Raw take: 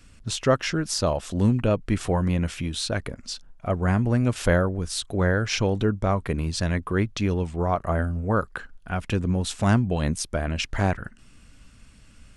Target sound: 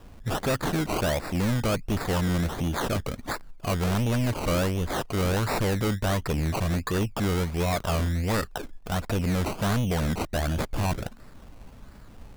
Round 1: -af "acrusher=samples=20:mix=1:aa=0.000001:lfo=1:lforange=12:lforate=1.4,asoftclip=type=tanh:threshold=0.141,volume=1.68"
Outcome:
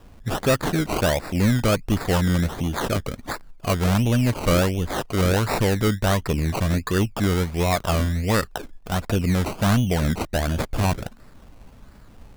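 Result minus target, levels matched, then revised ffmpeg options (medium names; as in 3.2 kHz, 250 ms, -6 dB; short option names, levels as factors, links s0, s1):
saturation: distortion -8 dB
-af "acrusher=samples=20:mix=1:aa=0.000001:lfo=1:lforange=12:lforate=1.4,asoftclip=type=tanh:threshold=0.0473,volume=1.68"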